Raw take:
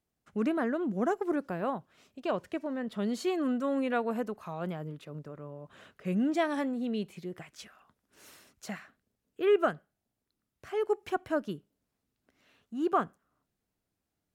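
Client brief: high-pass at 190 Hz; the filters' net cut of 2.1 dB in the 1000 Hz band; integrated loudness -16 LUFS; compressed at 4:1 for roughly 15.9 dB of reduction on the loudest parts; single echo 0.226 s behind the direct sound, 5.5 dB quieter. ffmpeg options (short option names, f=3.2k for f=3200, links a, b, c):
-af "highpass=190,equalizer=f=1k:t=o:g=-3,acompressor=threshold=-41dB:ratio=4,aecho=1:1:226:0.531,volume=28dB"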